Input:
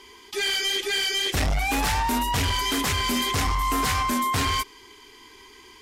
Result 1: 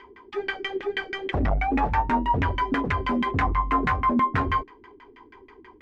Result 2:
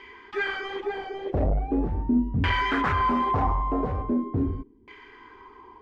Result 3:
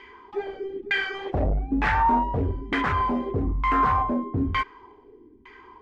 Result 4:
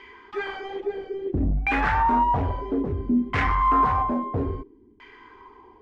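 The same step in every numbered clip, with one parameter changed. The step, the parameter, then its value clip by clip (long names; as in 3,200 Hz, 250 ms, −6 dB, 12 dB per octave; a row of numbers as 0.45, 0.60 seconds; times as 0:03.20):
auto-filter low-pass, speed: 6.2, 0.41, 1.1, 0.6 Hertz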